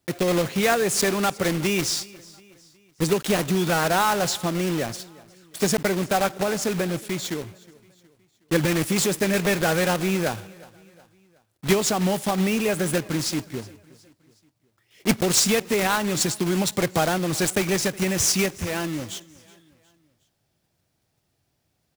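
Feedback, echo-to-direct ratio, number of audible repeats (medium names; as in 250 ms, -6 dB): 47%, -21.5 dB, 2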